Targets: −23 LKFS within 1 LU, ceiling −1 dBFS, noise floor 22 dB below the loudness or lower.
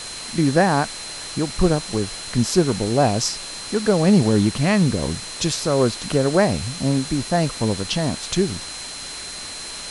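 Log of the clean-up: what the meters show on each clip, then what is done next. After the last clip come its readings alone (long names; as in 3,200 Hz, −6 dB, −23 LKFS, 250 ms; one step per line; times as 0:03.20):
interfering tone 4,100 Hz; level of the tone −35 dBFS; background noise floor −33 dBFS; target noise floor −43 dBFS; integrated loudness −21.0 LKFS; sample peak −3.0 dBFS; target loudness −23.0 LKFS
→ notch filter 4,100 Hz, Q 30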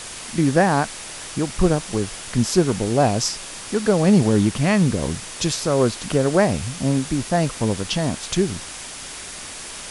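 interfering tone none found; background noise floor −35 dBFS; target noise floor −43 dBFS
→ noise reduction from a noise print 8 dB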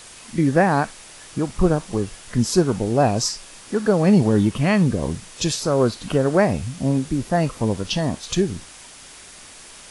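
background noise floor −43 dBFS; integrated loudness −21.0 LKFS; sample peak −3.5 dBFS; target loudness −23.0 LKFS
→ level −2 dB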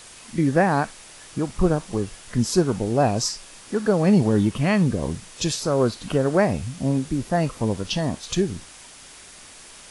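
integrated loudness −23.0 LKFS; sample peak −5.5 dBFS; background noise floor −45 dBFS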